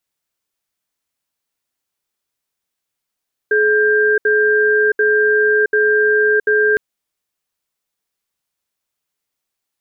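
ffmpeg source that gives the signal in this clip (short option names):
-f lavfi -i "aevalsrc='0.211*(sin(2*PI*425*t)+sin(2*PI*1590*t))*clip(min(mod(t,0.74),0.67-mod(t,0.74))/0.005,0,1)':d=3.26:s=44100"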